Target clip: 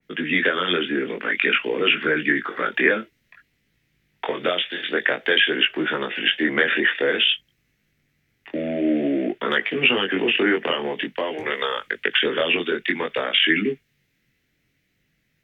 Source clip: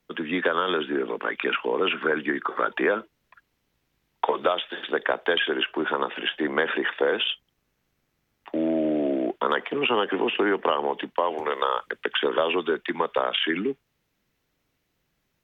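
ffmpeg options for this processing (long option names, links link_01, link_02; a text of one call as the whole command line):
ffmpeg -i in.wav -af "equalizer=frequency=125:width_type=o:width=1:gain=7,equalizer=frequency=250:width_type=o:width=1:gain=3,equalizer=frequency=1000:width_type=o:width=1:gain=-11,equalizer=frequency=2000:width_type=o:width=1:gain=11,flanger=delay=19:depth=4.3:speed=0.52,adynamicequalizer=threshold=0.0178:dfrequency=2500:dqfactor=0.7:tfrequency=2500:tqfactor=0.7:attack=5:release=100:ratio=0.375:range=2:mode=boostabove:tftype=highshelf,volume=4dB" out.wav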